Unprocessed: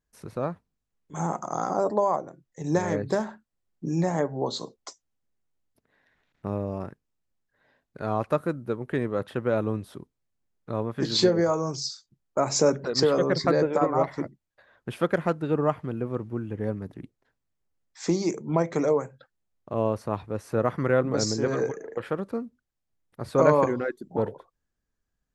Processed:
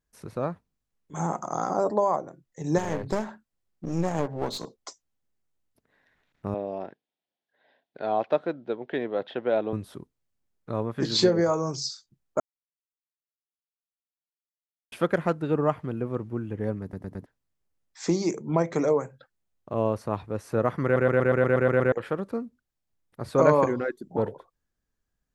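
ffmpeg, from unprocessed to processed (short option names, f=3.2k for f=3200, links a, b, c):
-filter_complex "[0:a]asettb=1/sr,asplit=3[a][b][c];[a]atrim=end=2.784[d];[b]atrim=start=2.78:end=4.75,asetpts=PTS-STARTPTS,afade=t=in:d=0.004:c=qsin,afade=t=out:st=1.966:d=0.004:c=qsin,aeval=exprs='clip(val(0),-1,0.0188)':c=same[e];[c]atrim=start=4.746[f];[d][e]acrossfade=d=0.004:c1=hsin:c2=qsin[g];[g][f]acrossfade=d=0.004:c1=qsin:c2=hsin,asettb=1/sr,asplit=3[h][i][j];[h]atrim=end=6.544[k];[i]atrim=start=6.54:end=9.73,asetpts=PTS-STARTPTS,afade=t=in:d=0.004:c=qsin,afade=t=out:st=3.186:d=0.004:c=qsin,highpass=290,equalizer=f=710:t=q:w=4:g=7,equalizer=f=1.2k:t=q:w=4:g=-9,equalizer=f=3.4k:t=q:w=4:g=7,lowpass=f=4.6k:w=0.5412,lowpass=f=4.6k:w=1.3066[l];[j]atrim=start=9.726[m];[k][l]acrossfade=d=0.004:c1=hsin:c2=qsin[n];[n][m]acrossfade=d=0.004:c1=qsin:c2=hsin,asplit=16[o][p][q][r][s][t][u][v][w][x][y][z][aa][ab][ac][ad];[o]atrim=end=12.4,asetpts=PTS-STARTPTS,afade=t=out:st=12.396:d=0.004:c=hsin[ae];[p]atrim=start=12.4:end=14.92,asetpts=PTS-STARTPTS,volume=0[af];[q]atrim=start=14.92:end=16.932,asetpts=PTS-STARTPTS,afade=t=in:d=0.004:c=hsin[ag];[r]atrim=start=16.818:end=16.932[ah];[s]atrim=start=16.818:end=16.932[ai];[t]atrim=start=16.818:end=16.932[aj];[u]atrim=start=17.258:end=20.962[ak];[v]atrim=start=20.838:end=20.962[al];[w]atrim=start=20.838:end=20.962[am];[x]atrim=start=20.838:end=20.962[an];[y]atrim=start=20.838:end=20.962[ao];[z]atrim=start=20.838:end=20.962[ap];[aa]atrim=start=20.838:end=20.962[aq];[ab]atrim=start=20.838:end=20.962[ar];[ac]atrim=start=20.838:end=20.962[as];[ad]atrim=start=21.918[at];[ae][af][ag]concat=n=3:v=0:a=1[au];[au][ah]acrossfade=d=0.004:c1=hsin:c2=hsin[av];[av][ai]acrossfade=d=0.004:c1=hsin:c2=hsin[aw];[aw][aj]acrossfade=d=0.004:c1=hsin:c2=hsin[ax];[ax][ak]acrossfade=d=0.004:c1=hsin:c2=hsin[ay];[ay][al]acrossfade=d=0.004:c1=hsin:c2=hsin[az];[az][am]acrossfade=d=0.004:c1=hsin:c2=hsin[ba];[ba][an]acrossfade=d=0.004:c1=hsin:c2=hsin[bb];[bb][ao]acrossfade=d=0.004:c1=hsin:c2=hsin[bc];[bc][ap]acrossfade=d=0.004:c1=hsin:c2=hsin[bd];[bd][aq]acrossfade=d=0.004:c1=hsin:c2=hsin[be];[be][ar]acrossfade=d=0.004:c1=hsin:c2=hsin[bf];[bf][as]acrossfade=d=0.004:c1=hsin:c2=hsin[bg];[bg][at]acrossfade=d=0.004:c1=hsin:c2=hsin"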